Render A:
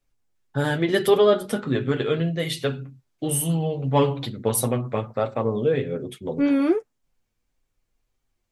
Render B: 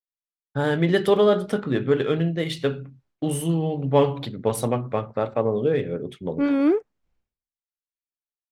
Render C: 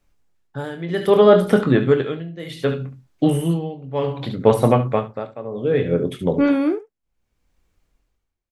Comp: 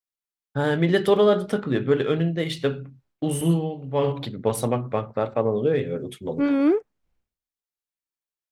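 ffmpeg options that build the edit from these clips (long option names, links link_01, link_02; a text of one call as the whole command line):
ffmpeg -i take0.wav -i take1.wav -i take2.wav -filter_complex "[1:a]asplit=3[link_01][link_02][link_03];[link_01]atrim=end=3.412[link_04];[2:a]atrim=start=3.408:end=4.122[link_05];[link_02]atrim=start=4.118:end=5.802[link_06];[0:a]atrim=start=5.798:end=6.402[link_07];[link_03]atrim=start=6.398[link_08];[link_04][link_05]acrossfade=duration=0.004:curve1=hsin:curve2=hsin[link_09];[link_09][link_06]acrossfade=duration=0.004:curve1=hsin:curve2=hsin[link_10];[link_10][link_07]acrossfade=duration=0.004:curve1=hsin:curve2=hsin[link_11];[link_11][link_08]acrossfade=duration=0.004:curve1=hsin:curve2=hsin" out.wav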